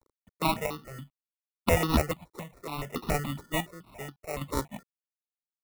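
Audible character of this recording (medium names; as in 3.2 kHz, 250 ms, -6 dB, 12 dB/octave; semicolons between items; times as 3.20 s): a quantiser's noise floor 10-bit, dither none; chopped level 0.68 Hz, depth 65%, duty 45%; aliases and images of a low sample rate 1.6 kHz, jitter 0%; notches that jump at a steady rate 7.1 Hz 700–2200 Hz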